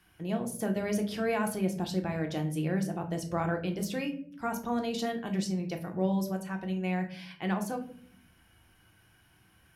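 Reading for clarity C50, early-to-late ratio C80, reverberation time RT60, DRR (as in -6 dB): 12.5 dB, 15.5 dB, not exponential, 3.0 dB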